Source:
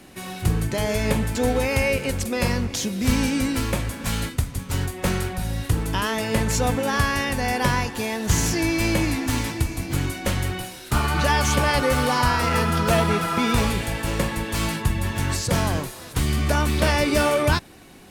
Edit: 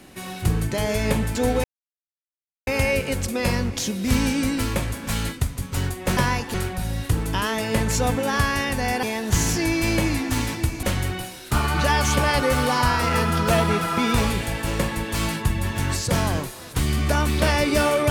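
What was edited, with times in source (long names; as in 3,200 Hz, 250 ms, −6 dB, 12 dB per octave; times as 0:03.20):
0:01.64: splice in silence 1.03 s
0:07.63–0:08.00: move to 0:05.14
0:09.80–0:10.23: remove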